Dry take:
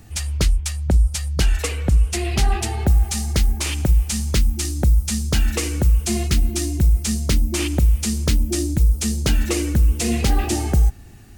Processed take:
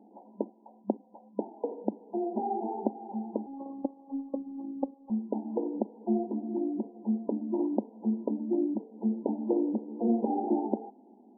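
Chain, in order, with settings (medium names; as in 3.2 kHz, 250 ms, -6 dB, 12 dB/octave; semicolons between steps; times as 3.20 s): FFT band-pass 200–1000 Hz; 3.46–5.10 s: robot voice 274 Hz; trim -3 dB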